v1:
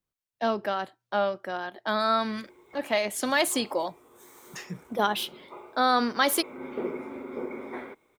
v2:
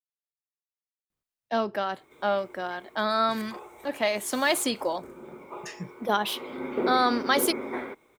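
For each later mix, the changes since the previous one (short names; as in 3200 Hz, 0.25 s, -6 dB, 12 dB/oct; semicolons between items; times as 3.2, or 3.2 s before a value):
speech: entry +1.10 s; background +4.5 dB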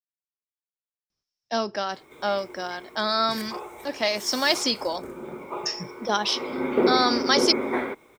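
speech: add synth low-pass 5400 Hz, resonance Q 13; background +7.0 dB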